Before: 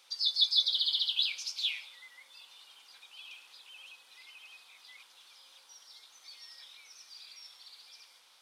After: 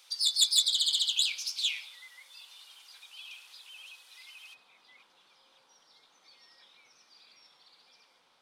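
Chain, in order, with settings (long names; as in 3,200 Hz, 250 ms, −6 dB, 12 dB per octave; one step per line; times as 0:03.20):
phase distortion by the signal itself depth 0.054 ms
spectral tilt +1.5 dB per octave, from 0:04.53 −4 dB per octave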